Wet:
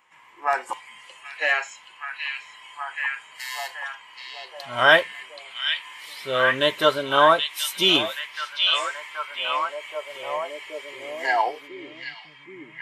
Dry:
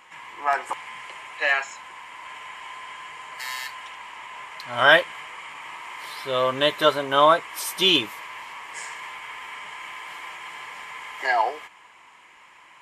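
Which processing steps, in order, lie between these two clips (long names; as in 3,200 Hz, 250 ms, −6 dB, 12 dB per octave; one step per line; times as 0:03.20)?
noise reduction from a noise print of the clip's start 11 dB
echo through a band-pass that steps 777 ms, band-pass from 3,200 Hz, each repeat −0.7 octaves, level −1.5 dB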